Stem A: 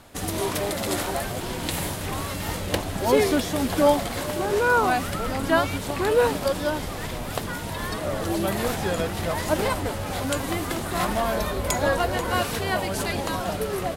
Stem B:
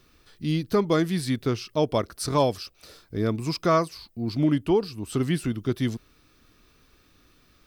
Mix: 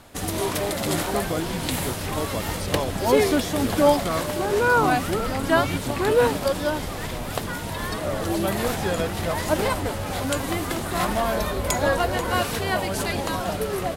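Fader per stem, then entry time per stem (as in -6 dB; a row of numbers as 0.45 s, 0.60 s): +1.0 dB, -6.5 dB; 0.00 s, 0.40 s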